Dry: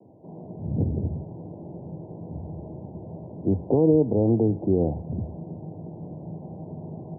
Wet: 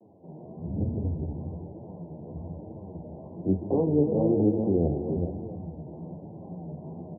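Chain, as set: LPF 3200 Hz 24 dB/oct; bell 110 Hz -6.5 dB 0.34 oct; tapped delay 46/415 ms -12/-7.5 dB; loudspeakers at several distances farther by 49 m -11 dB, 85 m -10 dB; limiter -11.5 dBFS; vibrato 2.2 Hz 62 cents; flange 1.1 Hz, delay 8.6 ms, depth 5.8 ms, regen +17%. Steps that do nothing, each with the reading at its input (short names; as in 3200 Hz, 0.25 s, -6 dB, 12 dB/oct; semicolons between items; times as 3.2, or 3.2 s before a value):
LPF 3200 Hz: input band ends at 850 Hz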